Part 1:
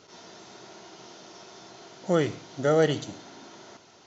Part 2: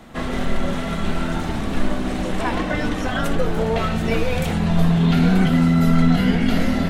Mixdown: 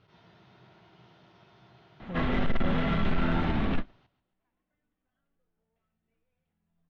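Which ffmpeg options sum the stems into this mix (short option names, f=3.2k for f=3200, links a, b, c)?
-filter_complex "[0:a]lowshelf=f=190:t=q:w=1.5:g=10,alimiter=limit=-20.5dB:level=0:latency=1,volume=-9.5dB,asplit=3[a][b][c];[b]volume=-13.5dB[d];[1:a]adelay=2000,volume=-0.5dB[e];[c]apad=whole_len=392457[f];[e][f]sidechaingate=range=-59dB:threshold=-57dB:ratio=16:detection=peak[g];[d]aecho=0:1:134|268|402|536|670:1|0.39|0.152|0.0593|0.0231[h];[a][g][h]amix=inputs=3:normalize=0,lowpass=f=3.4k:w=0.5412,lowpass=f=3.4k:w=1.3066,equalizer=f=560:t=o:w=1.4:g=-2.5,asoftclip=type=tanh:threshold=-18.5dB"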